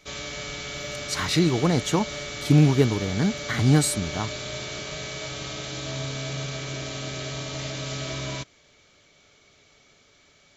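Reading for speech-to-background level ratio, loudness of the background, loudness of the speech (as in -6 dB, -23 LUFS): 9.5 dB, -32.5 LUFS, -23.0 LUFS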